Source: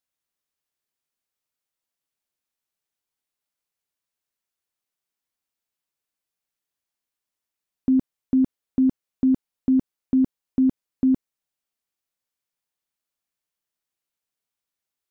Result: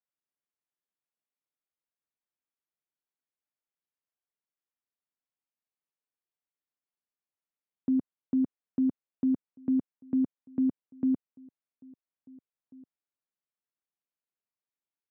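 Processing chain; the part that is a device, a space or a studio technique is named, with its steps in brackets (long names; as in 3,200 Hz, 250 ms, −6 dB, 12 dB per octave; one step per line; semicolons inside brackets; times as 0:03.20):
high-pass filter 140 Hz 12 dB per octave
shout across a valley (high-frequency loss of the air 450 metres; slap from a distant wall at 290 metres, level −25 dB)
level −6.5 dB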